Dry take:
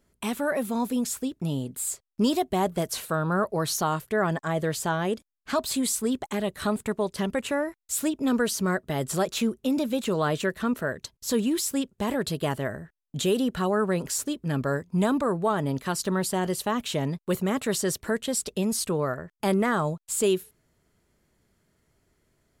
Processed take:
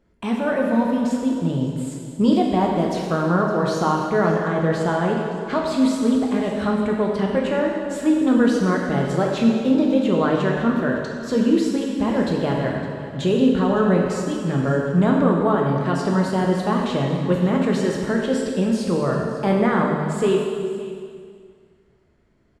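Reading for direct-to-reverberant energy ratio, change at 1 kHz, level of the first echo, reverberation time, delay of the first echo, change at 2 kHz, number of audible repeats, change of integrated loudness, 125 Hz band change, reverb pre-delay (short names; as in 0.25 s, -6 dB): -1.5 dB, +6.0 dB, -17.0 dB, 2.1 s, 0.561 s, +4.5 dB, 1, +6.5 dB, +7.5 dB, 4 ms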